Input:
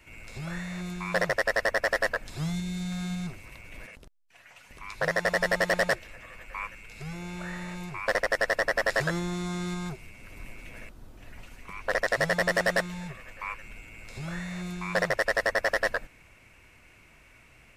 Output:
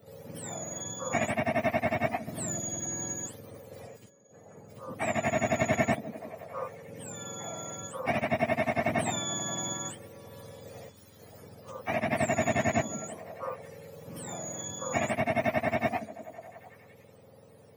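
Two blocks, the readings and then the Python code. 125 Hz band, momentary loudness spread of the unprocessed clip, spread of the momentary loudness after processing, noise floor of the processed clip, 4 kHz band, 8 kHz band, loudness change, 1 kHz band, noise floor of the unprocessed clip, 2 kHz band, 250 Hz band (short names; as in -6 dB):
-1.0 dB, 20 LU, 19 LU, -55 dBFS, -4.0 dB, +8.5 dB, -2.5 dB, +1.5 dB, -57 dBFS, -7.5 dB, +1.5 dB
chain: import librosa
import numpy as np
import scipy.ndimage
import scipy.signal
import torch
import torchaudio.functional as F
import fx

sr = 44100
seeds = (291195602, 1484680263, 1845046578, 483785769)

y = fx.octave_mirror(x, sr, pivot_hz=1100.0)
y = fx.echo_stepped(y, sr, ms=177, hz=200.0, octaves=0.7, feedback_pct=70, wet_db=-10.0)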